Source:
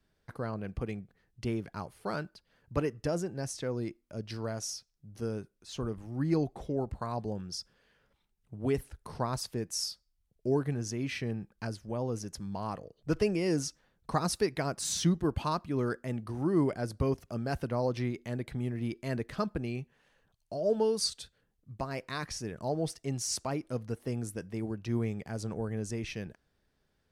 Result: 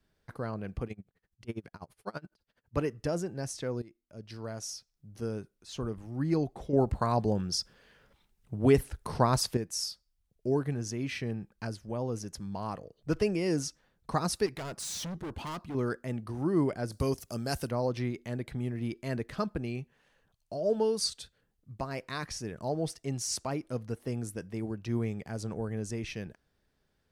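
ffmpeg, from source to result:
ffmpeg -i in.wav -filter_complex "[0:a]asplit=3[link_01][link_02][link_03];[link_01]afade=type=out:start_time=0.87:duration=0.02[link_04];[link_02]aeval=exprs='val(0)*pow(10,-28*(0.5-0.5*cos(2*PI*12*n/s))/20)':channel_layout=same,afade=type=in:start_time=0.87:duration=0.02,afade=type=out:start_time=2.74:duration=0.02[link_05];[link_03]afade=type=in:start_time=2.74:duration=0.02[link_06];[link_04][link_05][link_06]amix=inputs=3:normalize=0,asettb=1/sr,asplit=3[link_07][link_08][link_09];[link_07]atrim=end=14.464[link_10];[link_08]atrim=start=14.46:end=15.75,asetpts=PTS-STARTPTS,afade=type=in:duration=0.004:curve=qsin,afade=type=out:start_time=1.286:duration=0.004:curve=qsin,volume=35.5dB,asoftclip=hard,volume=-35.5dB[link_11];[link_09]atrim=start=15.746[link_12];[link_10][link_11]acrossfade=duration=0.004:curve1=hsin:curve2=qsin[link_13];[link_13][link_12]acrossfade=duration=0.004:curve1=qsin:curve2=hsin,asettb=1/sr,asplit=3[link_14][link_15][link_16];[link_14]atrim=end=16.924[link_17];[link_15]atrim=start=16.92:end=17.71,asetpts=PTS-STARTPTS,afade=type=in:duration=0.004:curve=qsin,afade=type=out:start_time=0.786:duration=0.004:curve=qsin,bass=frequency=250:gain=-1,treble=frequency=4000:gain=15[link_18];[link_16]atrim=start=17.706[link_19];[link_17][link_18]acrossfade=duration=0.004:curve1=hsin:curve2=qsin[link_20];[link_20][link_19]acrossfade=duration=0.004:curve1=qsin:curve2=hsin,asplit=4[link_21][link_22][link_23][link_24];[link_21]atrim=end=3.82,asetpts=PTS-STARTPTS,afade=type=out:start_time=3.816:duration=0.004:curve=hsin:silence=0.11885[link_25];[link_22]atrim=start=3.82:end=6.732,asetpts=PTS-STARTPTS,afade=type=in:duration=1.51:curve=qsin:silence=0.11885[link_26];[link_23]atrim=start=6.728:end=9.572,asetpts=PTS-STARTPTS,volume=7.5dB[link_27];[link_24]atrim=start=9.568[link_28];[link_25][link_26]concat=n=2:v=0:a=1[link_29];[link_29][link_27]acrossfade=duration=0.004:curve1=hsin:curve2=hsin[link_30];[link_30][link_28]acrossfade=duration=0.004:curve1=hsin:curve2=hsin" out.wav

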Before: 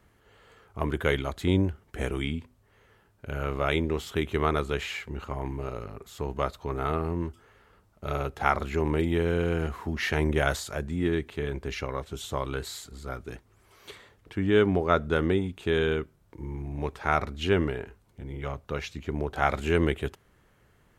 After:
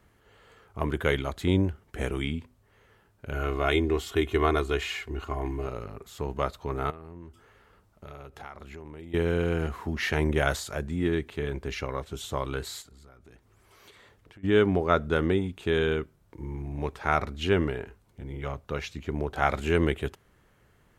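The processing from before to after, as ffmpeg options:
ffmpeg -i in.wav -filter_complex "[0:a]asettb=1/sr,asplit=3[link_01][link_02][link_03];[link_01]atrim=end=3.334[link_04];[link_02]atrim=start=3.33:end=5.67,asetpts=PTS-STARTPTS,afade=type=in:duration=0.004:curve=qsin,afade=type=out:start_time=2.336:duration=0.004:curve=qsin,aecho=1:1:2.8:0.65,atrim=end_sample=103194[link_05];[link_03]atrim=start=5.666[link_06];[link_04][link_05]acrossfade=duration=0.004:curve1=hsin:curve2=qsin[link_07];[link_07][link_06]acrossfade=duration=0.004:curve1=qsin:curve2=hsin,asettb=1/sr,asplit=3[link_08][link_09][link_10];[link_08]atrim=end=6.904[link_11];[link_09]atrim=start=6.9:end=9.14,asetpts=PTS-STARTPTS,afade=type=in:duration=0.004:curve=qsin,afade=type=out:start_time=2.236:duration=0.004:curve=qsin,acompressor=threshold=-42dB:ratio=4:attack=3.2:release=140:knee=1:detection=peak[link_12];[link_10]atrim=start=9.136[link_13];[link_11][link_12]acrossfade=duration=0.004:curve1=hsin:curve2=qsin[link_14];[link_14][link_13]acrossfade=duration=0.004:curve1=qsin:curve2=hsin,asplit=3[link_15][link_16][link_17];[link_15]afade=type=out:start_time=12.81:duration=0.02[link_18];[link_16]acompressor=threshold=-50dB:ratio=6:attack=3.2:release=140:knee=1:detection=peak,afade=type=in:start_time=12.81:duration=0.02,afade=type=out:start_time=14.43:duration=0.02[link_19];[link_17]afade=type=in:start_time=14.43:duration=0.02[link_20];[link_18][link_19][link_20]amix=inputs=3:normalize=0" out.wav

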